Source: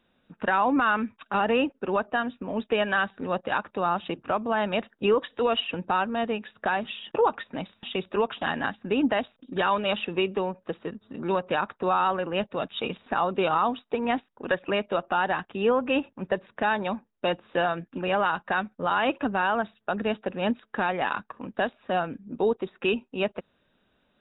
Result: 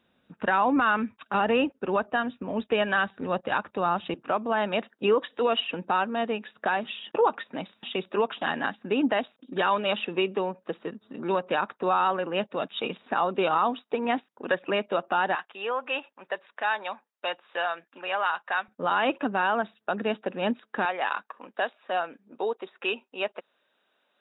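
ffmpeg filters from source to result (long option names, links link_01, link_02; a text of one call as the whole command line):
ffmpeg -i in.wav -af "asetnsamples=nb_out_samples=441:pad=0,asendcmd='4.14 highpass f 190;15.35 highpass f 770;18.68 highpass f 190;20.85 highpass f 530',highpass=60" out.wav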